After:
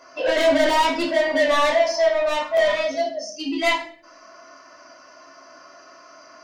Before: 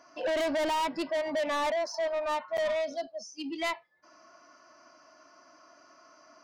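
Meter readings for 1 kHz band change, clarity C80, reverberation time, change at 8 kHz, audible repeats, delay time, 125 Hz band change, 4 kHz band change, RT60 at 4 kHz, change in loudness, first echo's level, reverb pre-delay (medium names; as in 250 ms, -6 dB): +10.0 dB, 11.5 dB, 0.45 s, +10.0 dB, no echo, no echo, no reading, +12.0 dB, 0.40 s, +11.0 dB, no echo, 4 ms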